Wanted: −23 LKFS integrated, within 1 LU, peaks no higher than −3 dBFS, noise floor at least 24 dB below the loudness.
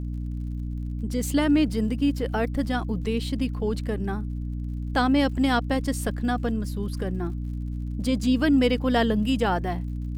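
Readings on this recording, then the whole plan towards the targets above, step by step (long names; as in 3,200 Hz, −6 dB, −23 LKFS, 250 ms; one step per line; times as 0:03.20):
crackle rate 48 per second; mains hum 60 Hz; hum harmonics up to 300 Hz; level of the hum −28 dBFS; integrated loudness −25.5 LKFS; sample peak −9.5 dBFS; target loudness −23.0 LKFS
→ click removal
mains-hum notches 60/120/180/240/300 Hz
level +2.5 dB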